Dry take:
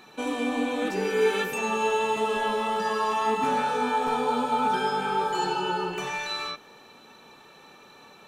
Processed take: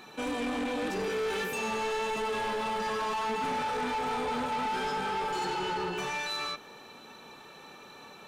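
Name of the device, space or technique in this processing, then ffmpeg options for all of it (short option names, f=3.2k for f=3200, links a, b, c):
saturation between pre-emphasis and de-emphasis: -af "highshelf=f=8.6k:g=12,asoftclip=type=tanh:threshold=-30.5dB,highshelf=f=8.6k:g=-12,volume=1.5dB"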